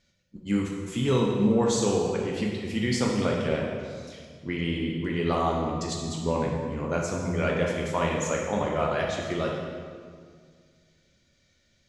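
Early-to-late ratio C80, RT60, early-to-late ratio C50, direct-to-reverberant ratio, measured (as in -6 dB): 3.5 dB, 1.9 s, 1.5 dB, -1.5 dB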